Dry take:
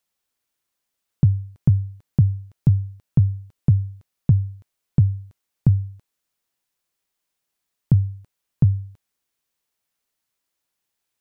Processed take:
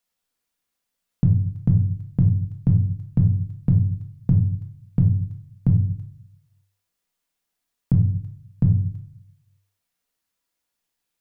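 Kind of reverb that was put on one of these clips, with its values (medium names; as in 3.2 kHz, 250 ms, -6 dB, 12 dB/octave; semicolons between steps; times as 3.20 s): simulated room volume 520 m³, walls furnished, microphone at 1.8 m; trim -2.5 dB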